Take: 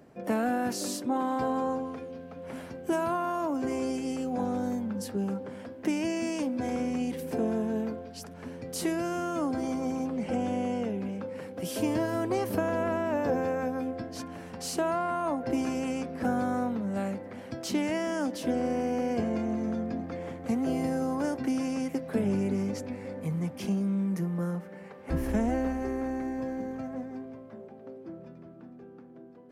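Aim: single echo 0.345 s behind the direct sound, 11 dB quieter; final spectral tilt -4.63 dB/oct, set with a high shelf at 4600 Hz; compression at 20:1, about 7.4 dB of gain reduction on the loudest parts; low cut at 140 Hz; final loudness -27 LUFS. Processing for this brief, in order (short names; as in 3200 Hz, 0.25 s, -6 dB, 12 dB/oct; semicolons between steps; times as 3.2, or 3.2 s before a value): HPF 140 Hz; high shelf 4600 Hz +8.5 dB; compressor 20:1, threshold -31 dBFS; echo 0.345 s -11 dB; gain +9 dB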